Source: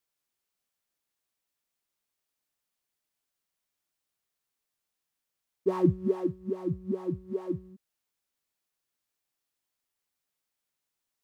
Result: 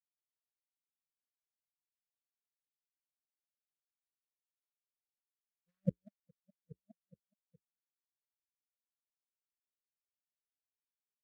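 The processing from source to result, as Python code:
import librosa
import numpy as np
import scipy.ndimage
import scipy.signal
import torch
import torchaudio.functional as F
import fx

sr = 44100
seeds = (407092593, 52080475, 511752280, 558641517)

y = scipy.signal.sosfilt(scipy.signal.ellip(3, 1.0, 40, [200.0, 1500.0], 'bandstop', fs=sr, output='sos'), x)
y = fx.power_curve(y, sr, exponent=3.0)
y = fx.vibrato_shape(y, sr, shape='saw_up', rate_hz=3.9, depth_cents=160.0)
y = y * 10.0 ** (-2.5 / 20.0)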